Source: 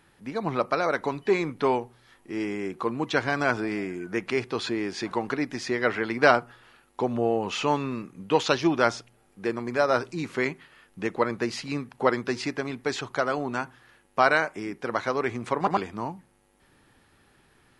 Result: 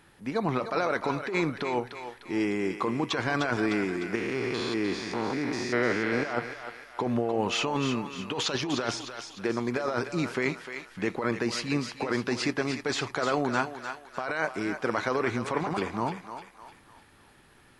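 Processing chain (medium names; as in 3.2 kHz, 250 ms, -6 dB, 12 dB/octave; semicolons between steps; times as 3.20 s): 4.15–6.25 s: spectrogram pixelated in time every 200 ms; compressor with a negative ratio -27 dBFS, ratio -1; thinning echo 302 ms, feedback 49%, high-pass 710 Hz, level -7 dB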